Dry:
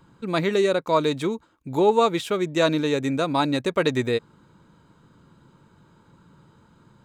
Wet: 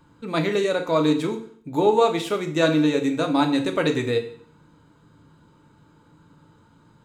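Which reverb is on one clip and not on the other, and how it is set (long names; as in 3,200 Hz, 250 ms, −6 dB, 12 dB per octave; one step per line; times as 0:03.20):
feedback delay network reverb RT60 0.53 s, low-frequency decay 1.1×, high-frequency decay 1×, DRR 3.5 dB
level −1.5 dB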